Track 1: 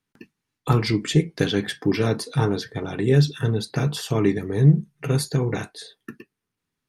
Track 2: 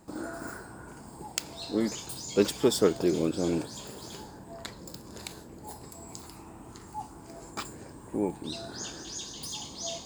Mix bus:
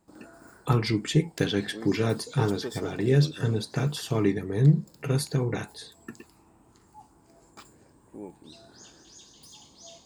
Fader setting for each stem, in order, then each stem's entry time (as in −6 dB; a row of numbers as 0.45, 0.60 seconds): −4.0, −12.0 decibels; 0.00, 0.00 seconds